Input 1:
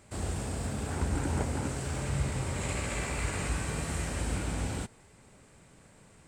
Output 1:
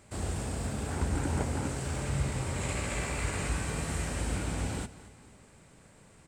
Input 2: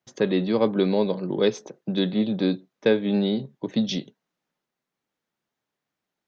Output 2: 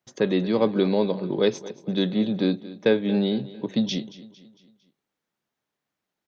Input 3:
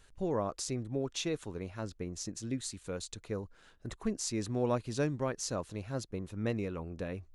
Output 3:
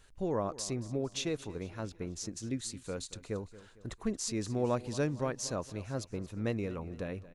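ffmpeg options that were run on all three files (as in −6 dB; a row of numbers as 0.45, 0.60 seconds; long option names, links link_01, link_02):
-af "aecho=1:1:227|454|681|908:0.133|0.0627|0.0295|0.0138"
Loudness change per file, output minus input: 0.0, 0.0, 0.0 LU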